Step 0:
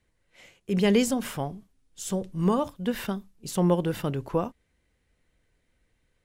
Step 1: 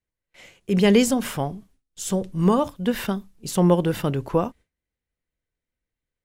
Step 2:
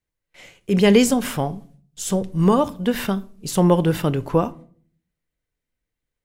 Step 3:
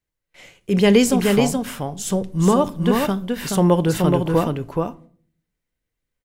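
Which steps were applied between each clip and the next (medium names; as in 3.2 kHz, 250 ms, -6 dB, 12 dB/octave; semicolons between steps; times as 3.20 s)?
gate with hold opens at -54 dBFS; trim +5 dB
simulated room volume 470 m³, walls furnished, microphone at 0.38 m; trim +2.5 dB
delay 425 ms -4 dB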